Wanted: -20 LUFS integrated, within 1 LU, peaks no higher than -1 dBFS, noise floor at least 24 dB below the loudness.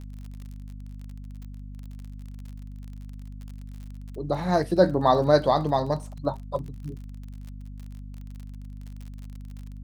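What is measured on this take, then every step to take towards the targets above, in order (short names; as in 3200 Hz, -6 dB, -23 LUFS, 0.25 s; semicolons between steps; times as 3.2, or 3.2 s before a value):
ticks 43/s; hum 50 Hz; harmonics up to 250 Hz; hum level -36 dBFS; loudness -24.5 LUFS; peak -6.0 dBFS; loudness target -20.0 LUFS
-> de-click; de-hum 50 Hz, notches 5; gain +4.5 dB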